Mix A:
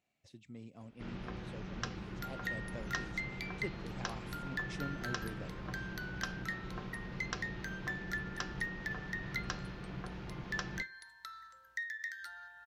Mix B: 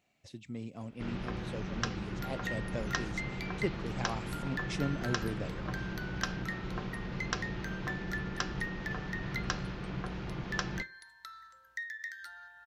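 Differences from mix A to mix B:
speech +8.5 dB; first sound +5.5 dB

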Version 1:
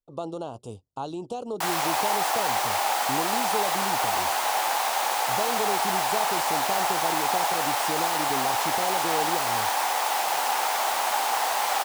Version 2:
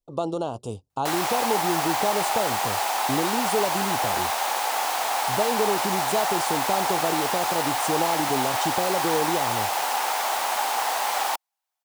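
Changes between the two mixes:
speech +6.0 dB; background: entry -0.55 s

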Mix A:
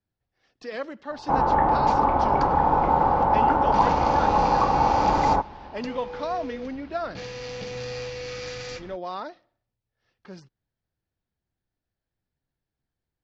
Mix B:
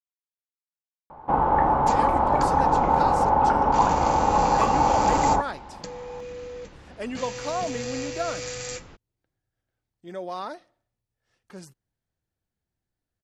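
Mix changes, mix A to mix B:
speech: entry +1.25 s; master: remove steep low-pass 5400 Hz 36 dB/oct

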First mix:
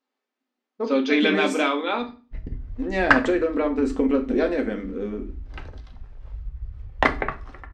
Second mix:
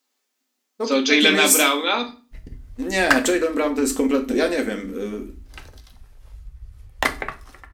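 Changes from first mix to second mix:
background -6.0 dB; master: remove tape spacing loss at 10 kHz 31 dB

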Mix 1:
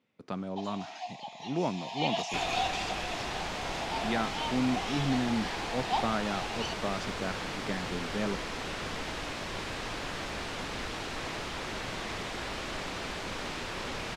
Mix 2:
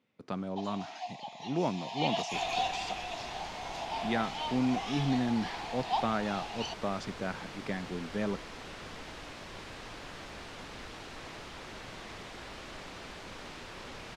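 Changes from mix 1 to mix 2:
second sound -8.0 dB; reverb: off

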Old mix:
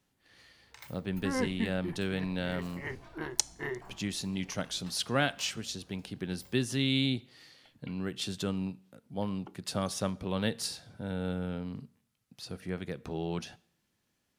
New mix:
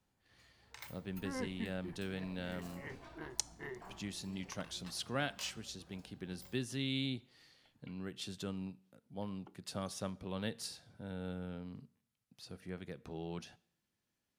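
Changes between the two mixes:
speech -8.5 dB; second sound -9.5 dB

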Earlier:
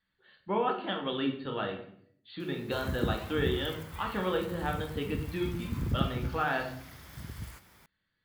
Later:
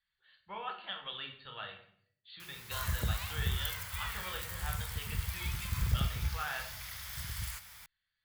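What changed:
background +11.0 dB; master: add passive tone stack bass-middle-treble 10-0-10

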